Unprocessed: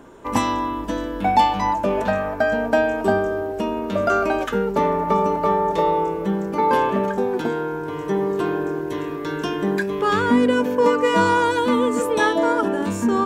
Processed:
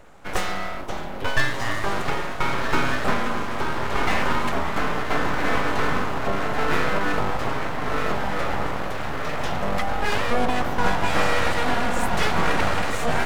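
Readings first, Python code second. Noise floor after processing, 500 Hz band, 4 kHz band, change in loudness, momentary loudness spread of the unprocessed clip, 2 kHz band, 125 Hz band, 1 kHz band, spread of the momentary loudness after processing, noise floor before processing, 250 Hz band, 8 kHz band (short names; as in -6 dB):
-28 dBFS, -8.0 dB, +2.5 dB, -4.0 dB, 8 LU, +1.5 dB, +1.0 dB, -4.5 dB, 6 LU, -29 dBFS, -7.5 dB, n/a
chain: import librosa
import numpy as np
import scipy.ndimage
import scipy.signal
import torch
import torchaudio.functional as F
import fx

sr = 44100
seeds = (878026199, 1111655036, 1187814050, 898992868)

y = fx.echo_diffused(x, sr, ms=1455, feedback_pct=58, wet_db=-3.0)
y = np.abs(y)
y = y * 10.0 ** (-2.0 / 20.0)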